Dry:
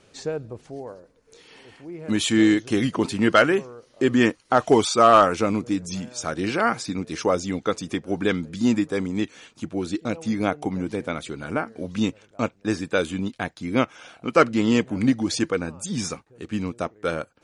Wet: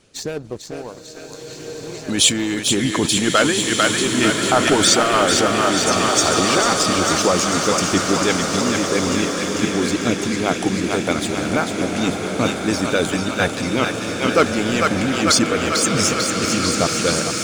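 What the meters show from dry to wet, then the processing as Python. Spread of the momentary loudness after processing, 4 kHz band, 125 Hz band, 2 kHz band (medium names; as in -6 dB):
13 LU, +13.0 dB, +5.0 dB, +7.5 dB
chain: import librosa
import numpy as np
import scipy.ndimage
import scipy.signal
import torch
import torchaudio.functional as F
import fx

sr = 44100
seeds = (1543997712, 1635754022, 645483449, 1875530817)

p1 = fx.low_shelf(x, sr, hz=390.0, db=7.0)
p2 = p1 + fx.echo_thinned(p1, sr, ms=446, feedback_pct=76, hz=610.0, wet_db=-5.0, dry=0)
p3 = fx.leveller(p2, sr, passes=1)
p4 = fx.over_compress(p3, sr, threshold_db=-17.0, ratio=-1.0)
p5 = p3 + (p4 * librosa.db_to_amplitude(-2.0))
p6 = fx.hpss(p5, sr, part='harmonic', gain_db=-10)
p7 = fx.high_shelf(p6, sr, hz=2600.0, db=10.0)
p8 = fx.rev_bloom(p7, sr, seeds[0], attack_ms=1650, drr_db=2.5)
y = p8 * librosa.db_to_amplitude(-5.0)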